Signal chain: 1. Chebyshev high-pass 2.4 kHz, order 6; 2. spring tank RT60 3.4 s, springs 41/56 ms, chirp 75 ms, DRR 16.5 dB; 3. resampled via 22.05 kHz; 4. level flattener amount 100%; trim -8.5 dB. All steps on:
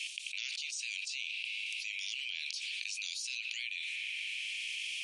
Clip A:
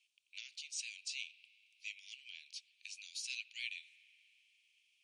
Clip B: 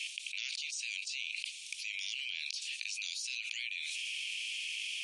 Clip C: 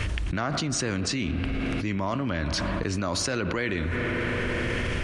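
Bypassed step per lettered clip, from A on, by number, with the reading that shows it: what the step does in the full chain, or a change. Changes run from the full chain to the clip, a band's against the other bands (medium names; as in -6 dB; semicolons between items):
4, crest factor change +2.5 dB; 2, momentary loudness spread change +2 LU; 1, momentary loudness spread change +2 LU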